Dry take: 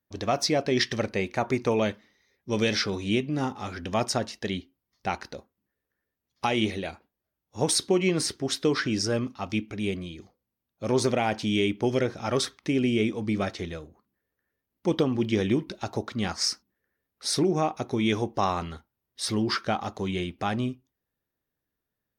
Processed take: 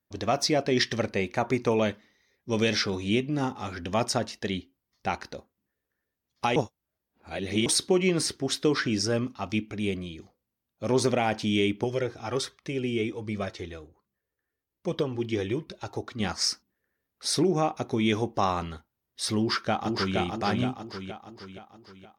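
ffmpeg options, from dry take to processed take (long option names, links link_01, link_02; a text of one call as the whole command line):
ffmpeg -i in.wav -filter_complex "[0:a]asettb=1/sr,asplit=3[link_01][link_02][link_03];[link_01]atrim=end=11.844[link_04];[link_02]atrim=start=11.84:end=16.2,asetpts=PTS-STARTPTS,afade=type=in:duration=0.004:curve=qsin,afade=type=out:start_time=4.356:duration=0.004:curve=qsin,flanger=delay=1.6:depth=1.2:regen=-38:speed=1.3:shape=triangular[link_05];[link_03]atrim=start=16.196[link_06];[link_04][link_05]acrossfade=duration=0.004:curve1=hsin:curve2=qsin[link_07];[link_07][link_06]acrossfade=duration=0.004:curve1=qsin:curve2=hsin,asplit=2[link_08][link_09];[link_09]afade=type=in:start_time=19.38:duration=0.01,afade=type=out:start_time=20.17:duration=0.01,aecho=0:1:470|940|1410|1880|2350|2820|3290:0.707946|0.353973|0.176986|0.0884932|0.0442466|0.0221233|0.0110617[link_10];[link_08][link_10]amix=inputs=2:normalize=0,asplit=3[link_11][link_12][link_13];[link_11]atrim=end=6.562[link_14];[link_12]atrim=start=6.558:end=7.662,asetpts=PTS-STARTPTS,areverse[link_15];[link_13]atrim=start=7.658[link_16];[link_14][link_15]acrossfade=duration=0.004:curve1=hsin:curve2=hsin[link_17];[link_17][link_16]acrossfade=duration=0.004:curve1=hsin:curve2=hsin" out.wav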